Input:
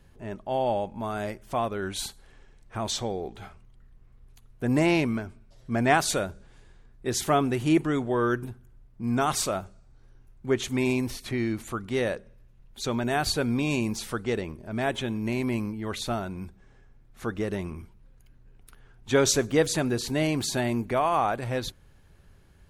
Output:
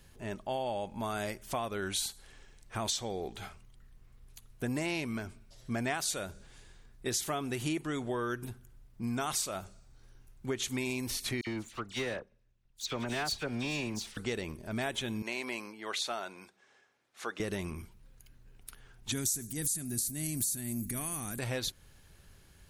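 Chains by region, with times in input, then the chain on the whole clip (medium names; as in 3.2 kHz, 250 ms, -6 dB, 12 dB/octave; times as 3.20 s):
11.41–14.17 s: low-pass 6.7 kHz + power-law waveshaper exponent 1.4 + phase dispersion lows, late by 58 ms, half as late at 2.6 kHz
15.22–17.40 s: high-pass 490 Hz + distance through air 51 m
19.12–21.39 s: FFT filter 240 Hz 0 dB, 360 Hz -8 dB, 510 Hz -20 dB, 870 Hz -24 dB, 1.8 kHz -11 dB, 3 kHz -15 dB, 4.7 kHz -6 dB, 9.7 kHz +12 dB + transient shaper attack -6 dB, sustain +5 dB
whole clip: treble shelf 2.4 kHz +11.5 dB; compression 6:1, threshold -28 dBFS; trim -3 dB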